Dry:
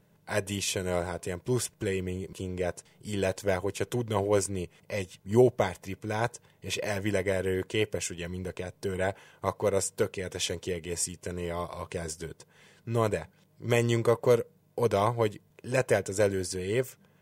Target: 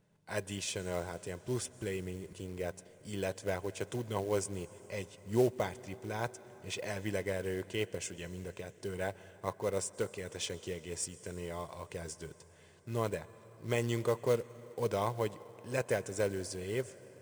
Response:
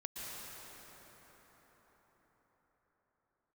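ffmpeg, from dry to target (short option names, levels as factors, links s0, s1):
-filter_complex "[0:a]aresample=22050,aresample=44100,asplit=2[s0][s1];[1:a]atrim=start_sample=2205,highshelf=f=5700:g=7[s2];[s1][s2]afir=irnorm=-1:irlink=0,volume=0.15[s3];[s0][s3]amix=inputs=2:normalize=0,acrusher=bits=5:mode=log:mix=0:aa=0.000001,volume=0.398"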